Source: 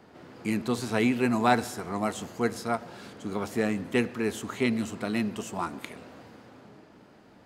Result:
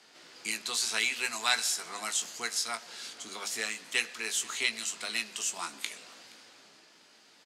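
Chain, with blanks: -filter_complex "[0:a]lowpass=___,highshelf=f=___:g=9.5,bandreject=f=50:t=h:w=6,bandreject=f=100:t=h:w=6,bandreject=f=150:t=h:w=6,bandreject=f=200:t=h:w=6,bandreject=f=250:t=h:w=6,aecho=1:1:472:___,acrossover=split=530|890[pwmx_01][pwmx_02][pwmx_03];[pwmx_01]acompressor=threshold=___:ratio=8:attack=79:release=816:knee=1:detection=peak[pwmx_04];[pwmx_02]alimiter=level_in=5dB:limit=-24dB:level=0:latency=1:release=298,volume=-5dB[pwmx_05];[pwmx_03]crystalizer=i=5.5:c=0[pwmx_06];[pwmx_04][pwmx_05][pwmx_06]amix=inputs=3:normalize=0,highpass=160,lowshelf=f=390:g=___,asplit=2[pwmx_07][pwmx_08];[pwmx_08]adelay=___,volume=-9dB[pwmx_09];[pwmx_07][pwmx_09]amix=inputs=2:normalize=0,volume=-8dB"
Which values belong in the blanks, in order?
6200, 2400, 0.0708, -37dB, -9.5, 18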